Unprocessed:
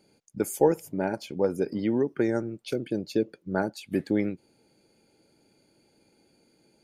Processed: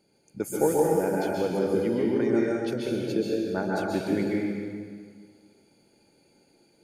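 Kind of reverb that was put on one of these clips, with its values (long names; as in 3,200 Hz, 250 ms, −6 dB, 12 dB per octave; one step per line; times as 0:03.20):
dense smooth reverb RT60 1.8 s, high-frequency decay 0.95×, pre-delay 115 ms, DRR −4.5 dB
level −3.5 dB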